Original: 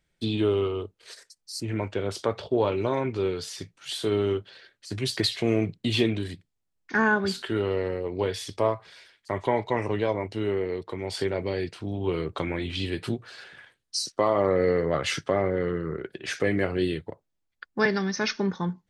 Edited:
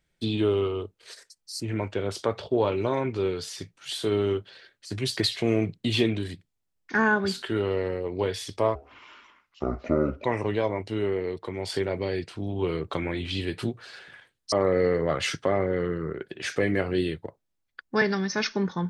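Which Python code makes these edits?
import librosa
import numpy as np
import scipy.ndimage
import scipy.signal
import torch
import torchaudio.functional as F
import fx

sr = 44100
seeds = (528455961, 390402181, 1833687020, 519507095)

y = fx.edit(x, sr, fx.speed_span(start_s=8.75, length_s=0.94, speed=0.63),
    fx.cut(start_s=13.97, length_s=0.39), tone=tone)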